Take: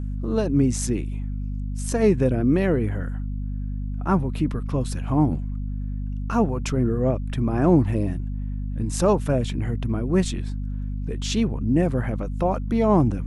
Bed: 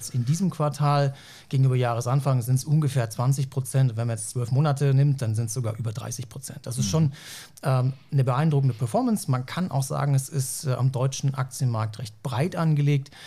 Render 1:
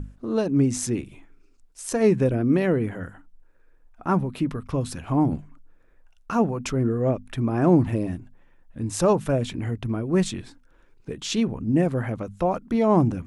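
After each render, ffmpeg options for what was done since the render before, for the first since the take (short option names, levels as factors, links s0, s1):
-af "bandreject=f=50:t=h:w=6,bandreject=f=100:t=h:w=6,bandreject=f=150:t=h:w=6,bandreject=f=200:t=h:w=6,bandreject=f=250:t=h:w=6"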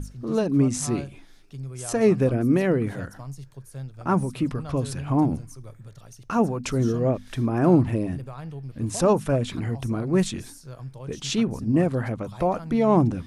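-filter_complex "[1:a]volume=0.178[s0];[0:a][s0]amix=inputs=2:normalize=0"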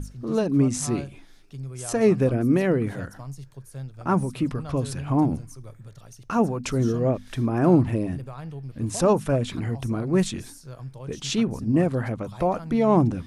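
-af anull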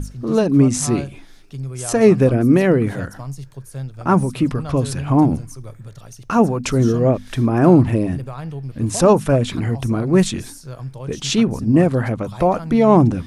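-af "volume=2.24,alimiter=limit=0.891:level=0:latency=1"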